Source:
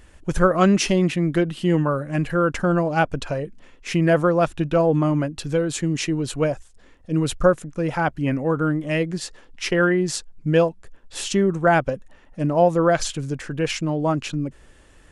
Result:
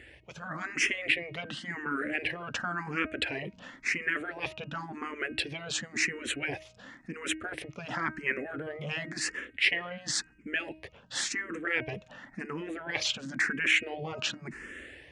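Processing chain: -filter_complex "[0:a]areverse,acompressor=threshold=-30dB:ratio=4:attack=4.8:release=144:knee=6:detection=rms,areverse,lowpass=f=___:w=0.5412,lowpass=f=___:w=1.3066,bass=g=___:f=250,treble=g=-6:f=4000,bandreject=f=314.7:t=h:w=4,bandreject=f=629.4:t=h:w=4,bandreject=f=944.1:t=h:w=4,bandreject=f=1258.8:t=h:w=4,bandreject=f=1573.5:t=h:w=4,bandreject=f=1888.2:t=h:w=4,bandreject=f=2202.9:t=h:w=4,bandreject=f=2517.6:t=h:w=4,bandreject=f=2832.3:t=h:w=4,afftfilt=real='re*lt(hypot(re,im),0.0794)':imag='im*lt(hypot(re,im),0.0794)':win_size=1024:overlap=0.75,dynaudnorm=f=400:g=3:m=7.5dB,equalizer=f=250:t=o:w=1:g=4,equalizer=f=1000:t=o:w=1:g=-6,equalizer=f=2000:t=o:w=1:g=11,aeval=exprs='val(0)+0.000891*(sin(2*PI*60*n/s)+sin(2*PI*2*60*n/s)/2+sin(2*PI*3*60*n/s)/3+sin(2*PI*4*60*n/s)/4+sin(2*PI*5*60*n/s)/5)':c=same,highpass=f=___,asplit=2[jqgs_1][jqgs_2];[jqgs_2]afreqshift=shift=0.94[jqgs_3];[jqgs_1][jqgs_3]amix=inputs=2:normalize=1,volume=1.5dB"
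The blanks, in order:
9400, 9400, -5, 80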